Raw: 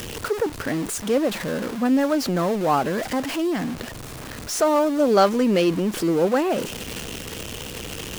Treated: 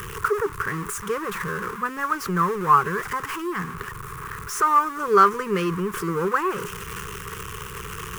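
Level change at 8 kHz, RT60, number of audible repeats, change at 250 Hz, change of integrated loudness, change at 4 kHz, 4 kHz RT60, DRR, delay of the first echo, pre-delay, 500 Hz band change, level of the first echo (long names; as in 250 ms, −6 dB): −3.5 dB, no reverb audible, no echo audible, −8.5 dB, −1.0 dB, −7.5 dB, no reverb audible, no reverb audible, no echo audible, no reverb audible, −5.0 dB, no echo audible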